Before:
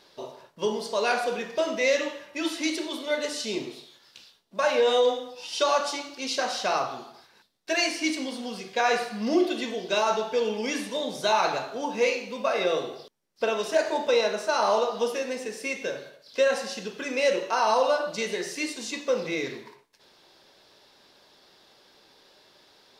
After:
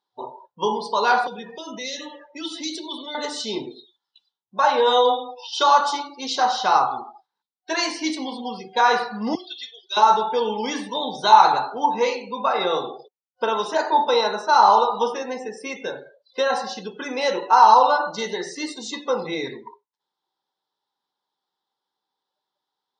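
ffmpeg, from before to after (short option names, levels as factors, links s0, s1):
-filter_complex "[0:a]asettb=1/sr,asplit=3[s0][s1][s2];[s0]atrim=end=1.274[s3];[s1]atrim=start=1.27:end=3.15,asetpts=PTS-STARTPTS,afade=t=in:d=0.004:c=qsin,afade=t=out:st=1.876:d=0.004:c=qsin,acrossover=split=250|3000[s4][s5][s6];[s5]acompressor=threshold=0.0126:ratio=10:attack=3.2:release=140:knee=2.83:detection=peak[s7];[s4][s7][s6]amix=inputs=3:normalize=0[s8];[s2]atrim=start=3.146[s9];[s3][s8]acrossfade=d=0.004:c1=hsin:c2=qsin[s10];[s10][s9]acrossfade=d=0.004:c1=qsin:c2=hsin,asettb=1/sr,asplit=3[s11][s12][s13];[s11]atrim=end=9.354[s14];[s12]atrim=start=9.35:end=9.97,asetpts=PTS-STARTPTS,afade=t=in:d=0.004:c=qsin,afade=t=out:st=0.616:d=0.004:c=qsin,bandpass=f=4800:t=q:w=1.1[s15];[s13]atrim=start=9.966[s16];[s14][s15]acrossfade=d=0.004:c1=hsin:c2=qsin[s17];[s17][s16]acrossfade=d=0.004:c1=qsin:c2=hsin,asettb=1/sr,asplit=3[s18][s19][s20];[s18]atrim=end=17.944[s21];[s19]atrim=start=17.94:end=19.03,asetpts=PTS-STARTPTS,afade=t=in:d=0.004:c=qsin,afade=t=out:st=1.086:d=0.004:c=qsin,asuperstop=centerf=2400:order=12:qfactor=6.9[s22];[s20]atrim=start=19.026[s23];[s21][s22]acrossfade=d=0.004:c1=hsin:c2=qsin[s24];[s24][s23]acrossfade=d=0.004:c1=qsin:c2=hsin,afftdn=nr=32:nf=-41,afftfilt=real='re*between(b*sr/4096,110,10000)':imag='im*between(b*sr/4096,110,10000)':win_size=4096:overlap=0.75,superequalizer=8b=0.708:9b=3.55:10b=2:12b=0.562:13b=1.58,volume=1.33"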